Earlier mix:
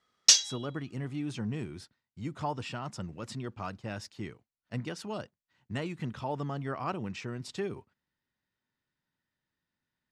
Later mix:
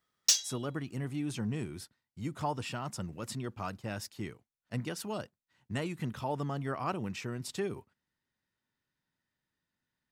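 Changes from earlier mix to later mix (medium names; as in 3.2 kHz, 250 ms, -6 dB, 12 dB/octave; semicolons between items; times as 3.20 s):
background -8.0 dB; master: remove low-pass 6.4 kHz 12 dB/octave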